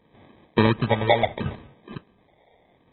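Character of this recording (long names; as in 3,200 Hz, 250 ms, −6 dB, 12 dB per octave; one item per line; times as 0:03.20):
phaser sweep stages 4, 0.7 Hz, lowest notch 250–1,600 Hz
aliases and images of a low sample rate 1,400 Hz, jitter 0%
AAC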